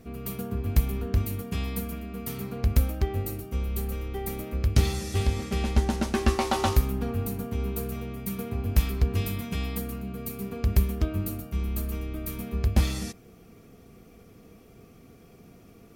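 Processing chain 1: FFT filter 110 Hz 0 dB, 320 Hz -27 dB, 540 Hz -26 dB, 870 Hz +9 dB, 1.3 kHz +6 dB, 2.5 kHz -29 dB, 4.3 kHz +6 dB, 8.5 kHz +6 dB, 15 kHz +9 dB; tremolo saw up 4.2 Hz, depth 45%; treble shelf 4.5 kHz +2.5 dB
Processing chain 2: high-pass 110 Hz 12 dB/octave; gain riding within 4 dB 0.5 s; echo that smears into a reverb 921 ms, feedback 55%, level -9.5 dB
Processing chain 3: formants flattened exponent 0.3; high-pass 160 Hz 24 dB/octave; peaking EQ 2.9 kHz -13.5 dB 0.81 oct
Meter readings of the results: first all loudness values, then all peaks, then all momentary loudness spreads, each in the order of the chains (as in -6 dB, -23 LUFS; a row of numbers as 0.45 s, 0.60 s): -29.5 LUFS, -31.5 LUFS, -27.0 LUFS; -6.5 dBFS, -12.5 dBFS, -4.5 dBFS; 7 LU, 14 LU, 11 LU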